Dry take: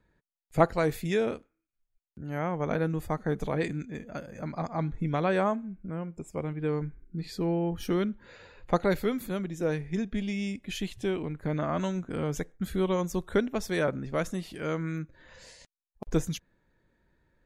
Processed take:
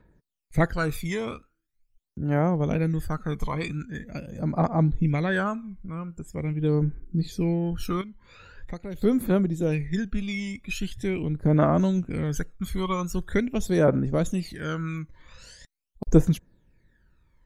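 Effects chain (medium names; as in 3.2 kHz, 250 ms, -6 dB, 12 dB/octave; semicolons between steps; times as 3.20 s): 8.01–9.02 s: compression 2:1, threshold -46 dBFS, peak gain reduction 15 dB; phaser 0.43 Hz, delay 1 ms, feedback 73%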